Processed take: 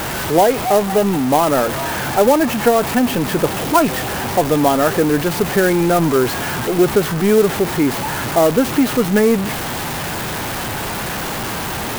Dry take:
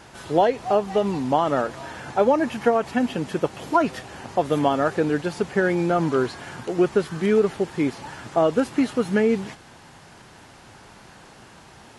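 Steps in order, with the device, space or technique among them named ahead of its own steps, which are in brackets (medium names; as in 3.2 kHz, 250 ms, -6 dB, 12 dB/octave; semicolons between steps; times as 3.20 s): early CD player with a faulty converter (jump at every zero crossing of -22 dBFS; sampling jitter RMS 0.042 ms); trim +4 dB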